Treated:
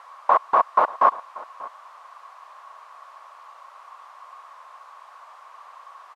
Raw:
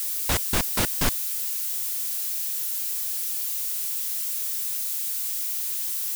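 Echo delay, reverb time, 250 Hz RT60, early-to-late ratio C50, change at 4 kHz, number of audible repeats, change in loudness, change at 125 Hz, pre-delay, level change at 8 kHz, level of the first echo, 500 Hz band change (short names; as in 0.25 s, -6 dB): 0.587 s, none, none, none, -20.5 dB, 1, +4.5 dB, under -25 dB, none, under -35 dB, -19.5 dB, +8.5 dB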